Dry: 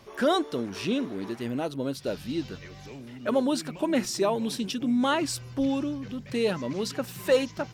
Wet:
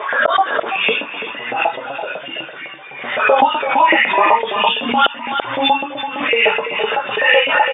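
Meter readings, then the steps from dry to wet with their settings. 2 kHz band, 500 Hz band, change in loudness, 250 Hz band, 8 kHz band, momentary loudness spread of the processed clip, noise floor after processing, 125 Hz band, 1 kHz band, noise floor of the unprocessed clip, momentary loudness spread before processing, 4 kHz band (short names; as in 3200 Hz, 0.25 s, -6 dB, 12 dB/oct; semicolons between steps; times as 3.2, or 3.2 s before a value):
+22.0 dB, +8.5 dB, +12.5 dB, -1.5 dB, under -35 dB, 13 LU, -32 dBFS, n/a, +19.5 dB, -45 dBFS, 9 LU, +15.5 dB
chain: phase scrambler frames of 0.2 s; spectral noise reduction 12 dB; notches 50/100/150/200/250/300/350/400/450 Hz; LFO high-pass saw up 7.9 Hz 620–2200 Hz; FFT band-pass 110–3700 Hz; flipped gate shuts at -16 dBFS, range -32 dB; air absorption 170 m; echo 0.334 s -10 dB; maximiser +24.5 dB; backwards sustainer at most 63 dB/s; gain -1.5 dB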